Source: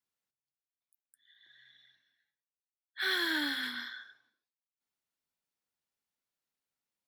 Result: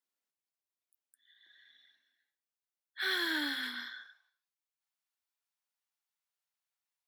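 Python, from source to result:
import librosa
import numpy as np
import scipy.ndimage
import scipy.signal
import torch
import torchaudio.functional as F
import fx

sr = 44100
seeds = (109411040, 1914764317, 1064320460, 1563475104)

y = fx.highpass(x, sr, hz=fx.steps((0.0, 210.0), (4.06, 700.0)), slope=24)
y = y * librosa.db_to_amplitude(-1.5)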